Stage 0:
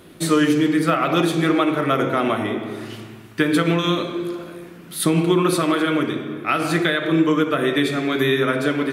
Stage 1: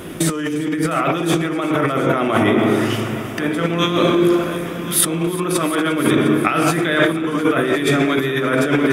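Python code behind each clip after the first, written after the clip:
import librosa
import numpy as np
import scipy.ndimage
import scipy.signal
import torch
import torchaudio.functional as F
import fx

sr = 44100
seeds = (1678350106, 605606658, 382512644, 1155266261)

y = fx.peak_eq(x, sr, hz=4200.0, db=-13.0, octaves=0.21)
y = fx.over_compress(y, sr, threshold_db=-26.0, ratio=-1.0)
y = fx.echo_heads(y, sr, ms=353, heads='all three', feedback_pct=46, wet_db=-18.5)
y = F.gain(torch.from_numpy(y), 8.0).numpy()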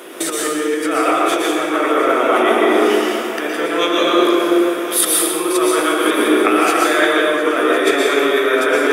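y = scipy.signal.sosfilt(scipy.signal.butter(4, 350.0, 'highpass', fs=sr, output='sos'), x)
y = fx.rev_plate(y, sr, seeds[0], rt60_s=1.4, hf_ratio=0.75, predelay_ms=105, drr_db=-2.5)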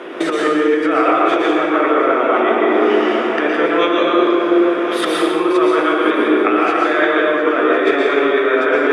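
y = scipy.signal.sosfilt(scipy.signal.butter(2, 2500.0, 'lowpass', fs=sr, output='sos'), x)
y = fx.rider(y, sr, range_db=4, speed_s=0.5)
y = F.gain(torch.from_numpy(y), 1.5).numpy()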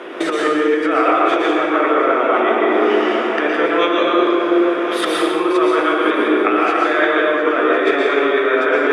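y = fx.low_shelf(x, sr, hz=160.0, db=-9.0)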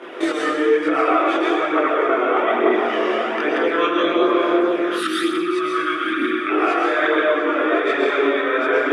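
y = fx.spec_box(x, sr, start_s=5.0, length_s=1.49, low_hz=380.0, high_hz=1100.0, gain_db=-19)
y = fx.chorus_voices(y, sr, voices=2, hz=0.56, base_ms=23, depth_ms=2.0, mix_pct=60)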